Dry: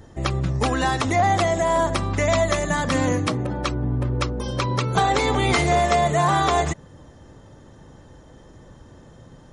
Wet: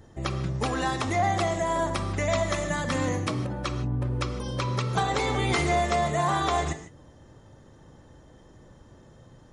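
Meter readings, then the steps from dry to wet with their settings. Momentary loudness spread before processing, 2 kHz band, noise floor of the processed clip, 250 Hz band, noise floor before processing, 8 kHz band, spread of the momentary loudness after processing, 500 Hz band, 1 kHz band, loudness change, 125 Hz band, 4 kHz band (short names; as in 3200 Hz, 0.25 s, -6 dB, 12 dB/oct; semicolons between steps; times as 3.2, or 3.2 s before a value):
7 LU, -5.5 dB, -53 dBFS, -5.5 dB, -48 dBFS, -5.5 dB, 6 LU, -6.0 dB, -6.0 dB, -5.5 dB, -5.0 dB, -5.5 dB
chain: non-linear reverb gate 0.18 s flat, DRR 8.5 dB; gain -6 dB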